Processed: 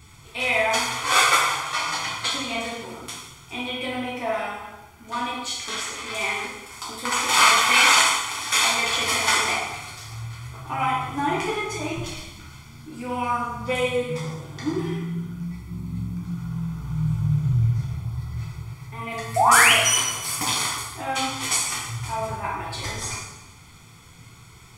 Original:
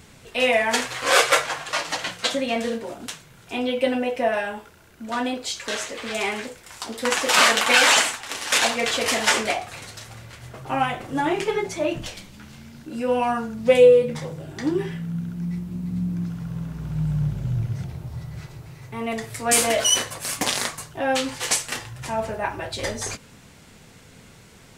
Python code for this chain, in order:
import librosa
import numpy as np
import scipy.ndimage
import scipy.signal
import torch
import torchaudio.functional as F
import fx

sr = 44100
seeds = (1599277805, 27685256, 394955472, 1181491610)

y = fx.peak_eq(x, sr, hz=220.0, db=-10.5, octaves=0.44)
y = y + 0.75 * np.pad(y, (int(0.9 * sr / 1000.0), 0))[:len(y)]
y = fx.spec_paint(y, sr, seeds[0], shape='rise', start_s=19.36, length_s=0.37, low_hz=650.0, high_hz=3400.0, level_db=-14.0)
y = fx.rev_plate(y, sr, seeds[1], rt60_s=1.0, hf_ratio=0.95, predelay_ms=0, drr_db=-3.0)
y = y * 10.0 ** (-5.5 / 20.0)